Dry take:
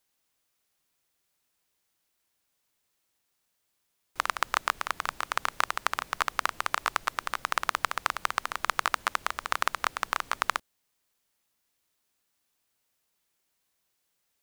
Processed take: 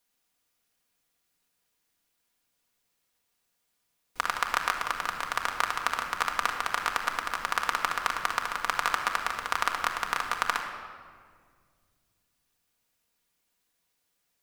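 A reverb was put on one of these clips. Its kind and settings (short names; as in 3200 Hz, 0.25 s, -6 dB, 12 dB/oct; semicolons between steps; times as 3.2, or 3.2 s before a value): shoebox room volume 3100 m³, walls mixed, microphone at 1.8 m; gain -1.5 dB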